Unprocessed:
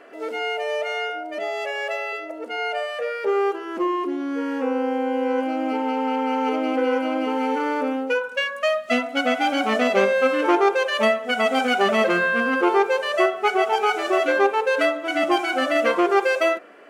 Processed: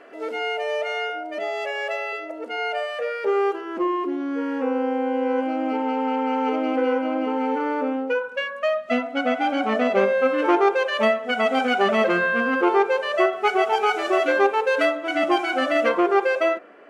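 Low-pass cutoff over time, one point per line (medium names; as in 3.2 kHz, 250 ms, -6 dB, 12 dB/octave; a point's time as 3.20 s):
low-pass 6 dB/octave
6.5 kHz
from 3.61 s 2.9 kHz
from 6.93 s 1.7 kHz
from 10.38 s 3.3 kHz
from 13.33 s 7.4 kHz
from 14.95 s 4.7 kHz
from 15.89 s 2.2 kHz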